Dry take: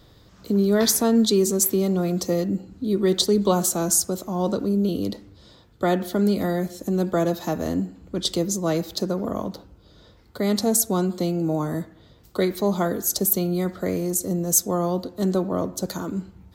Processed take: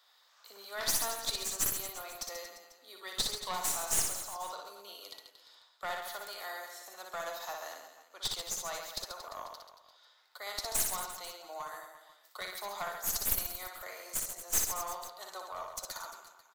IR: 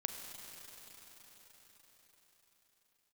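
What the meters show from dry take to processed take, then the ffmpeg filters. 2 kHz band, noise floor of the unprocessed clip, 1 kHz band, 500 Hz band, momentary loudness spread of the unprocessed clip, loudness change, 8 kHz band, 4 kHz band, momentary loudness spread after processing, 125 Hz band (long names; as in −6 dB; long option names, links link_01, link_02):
−4.5 dB, −53 dBFS, −9.0 dB, −21.5 dB, 9 LU, −12.5 dB, −9.0 dB, −7.5 dB, 17 LU, −29.0 dB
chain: -af "highpass=frequency=830:width=0.5412,highpass=frequency=830:width=1.3066,aeval=exprs='clip(val(0),-1,0.0376)':channel_layout=same,aecho=1:1:60|135|228.8|345.9|492.4:0.631|0.398|0.251|0.158|0.1,volume=-7.5dB"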